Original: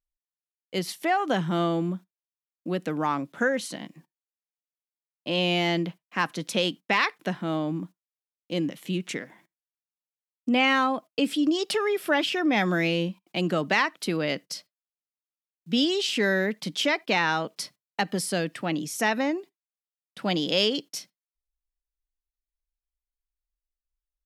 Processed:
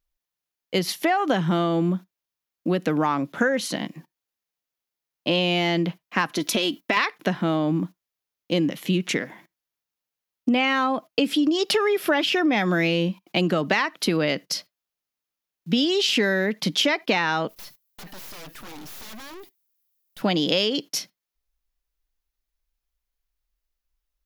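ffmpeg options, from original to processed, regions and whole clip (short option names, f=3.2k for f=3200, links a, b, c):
-filter_complex "[0:a]asettb=1/sr,asplit=3[a][b][c];[a]atrim=end=6.354[d];[b]atrim=start=6.35:end=6.97,asetpts=PTS-STARTPTS,afade=t=in:d=0.004:c=qsin,afade=t=out:st=0.616:d=0.004:c=qsin,highshelf=f=11k:g=9,aecho=1:1:3:0.55,atrim=end_sample=27342,acompressor=threshold=-26dB:ratio=3:attack=3.2:release=140:knee=1:detection=peak[e];[c]atrim=start=6.966[f];[d][e]acrossfade=d=0.004:c1=hsin:c2=qsin[g];[g][f]acrossfade=d=0.004:c1=qsin:c2=hsin,asettb=1/sr,asplit=3[h][i][j];[h]atrim=end=17.494[k];[i]atrim=start=17.49:end=20.22,asetpts=PTS-STARTPTS,afade=t=in:d=0.004:c=qsin,afade=t=out:st=2.726:d=0.004:c=qsin,aemphasis=mode=production:type=75fm,aeval=exprs='(mod(15*val(0)+1,2)-1)/15':c=same,aeval=exprs='(tanh(282*val(0)+0.7)-tanh(0.7))/282':c=same[l];[j]atrim=start=20.216[m];[k][l]acrossfade=d=0.004:c1=hsin:c2=qsin[n];[n][m]acrossfade=d=0.004:c1=qsin:c2=hsin,equalizer=f=8.4k:t=o:w=0.35:g=-8,acompressor=threshold=-27dB:ratio=6,volume=9dB"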